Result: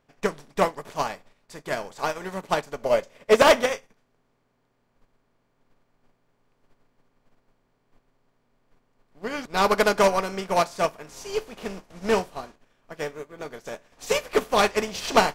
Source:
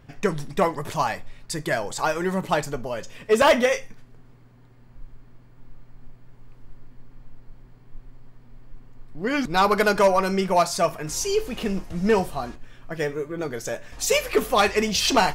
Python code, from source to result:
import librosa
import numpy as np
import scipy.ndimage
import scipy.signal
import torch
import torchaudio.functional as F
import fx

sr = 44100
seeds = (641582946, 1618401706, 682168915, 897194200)

y = fx.bin_compress(x, sr, power=0.6)
y = fx.small_body(y, sr, hz=(570.0, 2100.0), ring_ms=25, db=fx.line((2.81, 11.0), (3.4, 7.0)), at=(2.81, 3.4), fade=0.02)
y = fx.upward_expand(y, sr, threshold_db=-33.0, expansion=2.5)